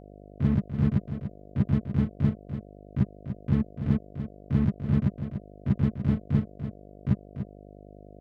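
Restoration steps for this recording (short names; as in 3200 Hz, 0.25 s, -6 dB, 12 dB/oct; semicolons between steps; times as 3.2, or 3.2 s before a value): de-hum 50.2 Hz, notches 14; inverse comb 0.292 s -9.5 dB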